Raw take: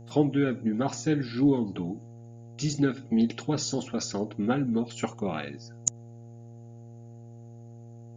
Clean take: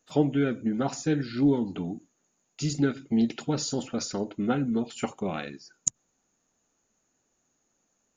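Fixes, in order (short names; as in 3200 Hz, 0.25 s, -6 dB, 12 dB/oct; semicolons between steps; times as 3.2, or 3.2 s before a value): de-hum 116.6 Hz, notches 7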